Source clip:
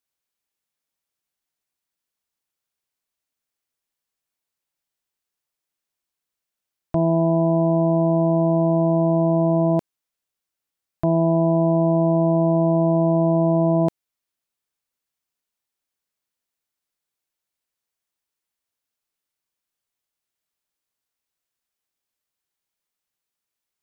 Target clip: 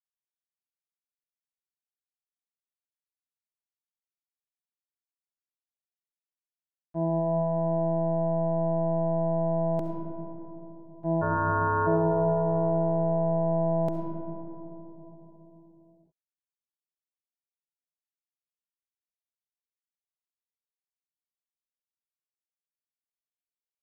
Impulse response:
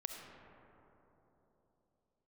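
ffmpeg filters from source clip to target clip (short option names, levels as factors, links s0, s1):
-filter_complex "[0:a]agate=range=0.0224:threshold=0.316:ratio=3:detection=peak,asplit=3[s0][s1][s2];[s0]afade=t=out:st=11.21:d=0.02[s3];[s1]aeval=exprs='val(0)*sin(2*PI*760*n/s)':c=same,afade=t=in:st=11.21:d=0.02,afade=t=out:st=11.86:d=0.02[s4];[s2]afade=t=in:st=11.86:d=0.02[s5];[s3][s4][s5]amix=inputs=3:normalize=0[s6];[1:a]atrim=start_sample=2205,asetrate=43659,aresample=44100[s7];[s6][s7]afir=irnorm=-1:irlink=0,volume=1.68"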